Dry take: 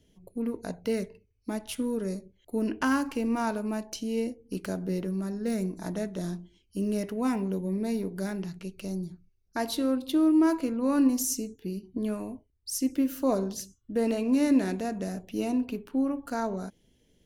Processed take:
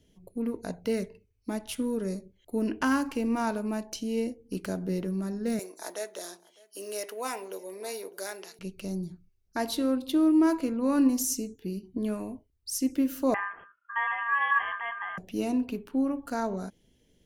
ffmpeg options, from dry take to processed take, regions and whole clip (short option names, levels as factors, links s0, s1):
-filter_complex "[0:a]asettb=1/sr,asplit=3[s0][s1][s2];[s0]atrim=end=5.594[s3];[s1]atrim=start=5.59:end=8.59,asetpts=PTS-STARTPTS,afade=t=in:d=0.004:c=qsin,afade=t=out:st=2.996:d=0.004:c=qsin,highpass=f=430:w=0.5412,highpass=f=430:w=1.3066,highshelf=f=3900:g=9,aecho=1:1:605:0.0668,atrim=end_sample=132300[s4];[s2]atrim=start=8.586[s5];[s3][s4]acrossfade=d=0.004:c1=hsin:c2=qsin[s6];[s6][s5]acrossfade=d=0.004:c1=qsin:c2=hsin,asettb=1/sr,asplit=3[s7][s8][s9];[s7]atrim=end=13.344[s10];[s8]atrim=start=13.34:end=15.18,asetpts=PTS-STARTPTS,afade=t=in:d=0.004:c=qsin,afade=t=out:st=1.836:d=0.004:c=qsin,bandreject=f=392.2:t=h:w=4,bandreject=f=784.4:t=h:w=4,bandreject=f=1176.6:t=h:w=4,bandreject=f=1568.8:t=h:w=4,bandreject=f=1961:t=h:w=4,bandreject=f=2353.2:t=h:w=4,aeval=exprs='val(0)*sin(2*PI*2000*n/s)':c=same,lowpass=f=2900:t=q:w=0.5098,lowpass=f=2900:t=q:w=0.6013,lowpass=f=2900:t=q:w=0.9,lowpass=f=2900:t=q:w=2.563,afreqshift=-3400[s11];[s9]atrim=start=15.176[s12];[s10][s11]acrossfade=d=0.004:c1=hsin:c2=qsin[s13];[s13][s12]acrossfade=d=0.004:c1=qsin:c2=hsin"